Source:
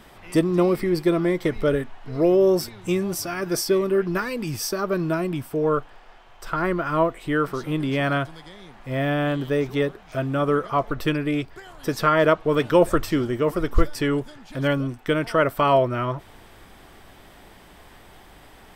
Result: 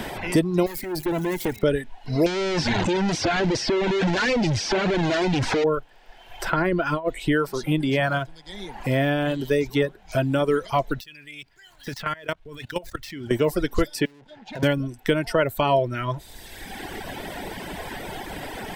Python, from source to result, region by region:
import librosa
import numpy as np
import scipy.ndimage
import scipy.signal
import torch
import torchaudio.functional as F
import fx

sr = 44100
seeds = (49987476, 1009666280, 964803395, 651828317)

y = fx.chain(x, sr, fx.crossing_spikes(level_db=-25.5),
    fx.highpass(hz=100.0, slope=12),
    fx.tube_stage(drive_db=25.0, bias=0.5), at=(0.66, 1.63))
y = fx.chain(y, sr, fx.clip_1bit(),
    fx.lowpass(hz=5800.0, slope=24), at=(2.26, 5.64))
y = fx.chain(y, sr, fx.high_shelf(hz=7600.0, db=-8.0),
    fx.over_compress(threshold_db=-23.0, ratio=-0.5), at=(6.57, 7.32))
y = fx.chain(y, sr, fx.law_mismatch(coded='A'),
    fx.high_shelf(hz=8800.0, db=-5.5), at=(8.06, 8.49))
y = fx.chain(y, sr, fx.median_filter(points=5),
    fx.tone_stack(knobs='5-5-5'),
    fx.level_steps(step_db=16), at=(11.0, 13.31))
y = fx.chain(y, sr, fx.lowpass(hz=4300.0, slope=12),
    fx.tube_stage(drive_db=42.0, bias=0.55),
    fx.band_squash(depth_pct=40), at=(14.05, 14.63))
y = fx.dereverb_blind(y, sr, rt60_s=1.5)
y = fx.peak_eq(y, sr, hz=1200.0, db=-13.5, octaves=0.21)
y = fx.band_squash(y, sr, depth_pct=70)
y = y * librosa.db_to_amplitude(3.0)